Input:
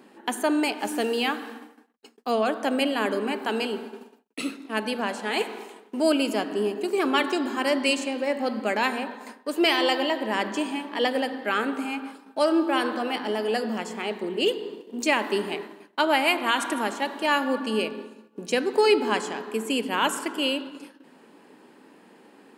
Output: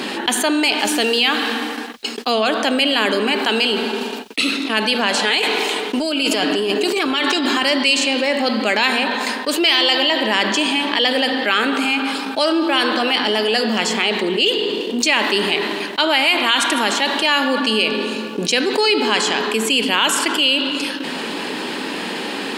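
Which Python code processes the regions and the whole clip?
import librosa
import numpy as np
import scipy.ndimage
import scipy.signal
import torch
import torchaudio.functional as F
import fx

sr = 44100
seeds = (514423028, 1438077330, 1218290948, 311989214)

y = fx.chain(x, sr, fx.comb(ms=6.7, depth=0.35),
    fx.over_compress(threshold_db=-29.0, ratio=-1.0), at=(5.14, 7.63))
y = fx.peak_eq(y, sr, hz=3700.0, db=13.5, octaves=1.8)
y = fx.env_flatten(y, sr, amount_pct=70)
y = y * librosa.db_to_amplitude(-3.5)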